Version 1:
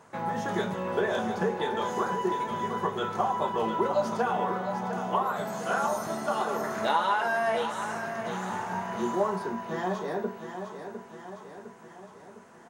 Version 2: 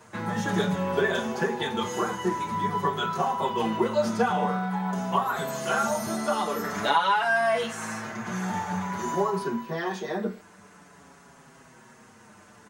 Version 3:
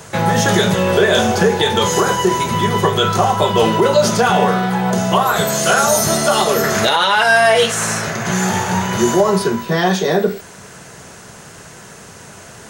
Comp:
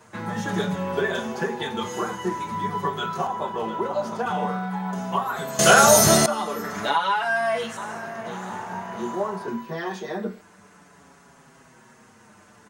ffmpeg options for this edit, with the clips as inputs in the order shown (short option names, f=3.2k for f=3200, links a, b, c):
-filter_complex "[0:a]asplit=2[a][b];[1:a]asplit=4[c][d][e][f];[c]atrim=end=3.272[g];[a]atrim=start=3.268:end=4.262[h];[d]atrim=start=4.258:end=5.592[i];[2:a]atrim=start=5.588:end=6.262[j];[e]atrim=start=6.258:end=7.772[k];[b]atrim=start=7.768:end=9.482[l];[f]atrim=start=9.478[m];[g][h]acrossfade=d=0.004:c1=hsin:c2=hsin[n];[n][i]acrossfade=d=0.004:c1=hsin:c2=hsin[o];[o][j]acrossfade=d=0.004:c1=hsin:c2=hsin[p];[p][k]acrossfade=d=0.004:c1=hsin:c2=hsin[q];[q][l]acrossfade=d=0.004:c1=hsin:c2=hsin[r];[r][m]acrossfade=d=0.004:c1=hsin:c2=hsin"